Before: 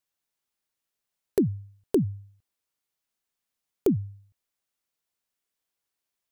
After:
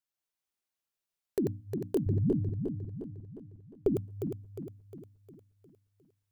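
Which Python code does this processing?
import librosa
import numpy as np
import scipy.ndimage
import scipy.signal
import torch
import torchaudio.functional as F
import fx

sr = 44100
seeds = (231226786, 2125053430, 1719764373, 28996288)

y = fx.reverse_delay_fb(x, sr, ms=178, feedback_pct=69, wet_db=-3.5)
y = fx.riaa(y, sr, side='playback', at=(2.06, 3.88))
y = fx.hum_notches(y, sr, base_hz=60, count=5)
y = F.gain(torch.from_numpy(y), -7.5).numpy()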